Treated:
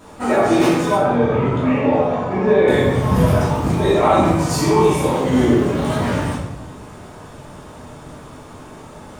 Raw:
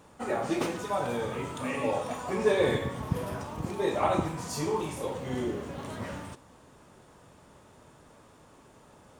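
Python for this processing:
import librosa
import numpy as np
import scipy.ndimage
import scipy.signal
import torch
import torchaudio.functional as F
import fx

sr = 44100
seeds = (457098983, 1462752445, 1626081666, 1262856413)

y = fx.rider(x, sr, range_db=3, speed_s=0.5)
y = fx.spacing_loss(y, sr, db_at_10k=27, at=(0.95, 2.68))
y = fx.room_shoebox(y, sr, seeds[0], volume_m3=290.0, walls='mixed', distance_m=2.8)
y = y * librosa.db_to_amplitude(5.5)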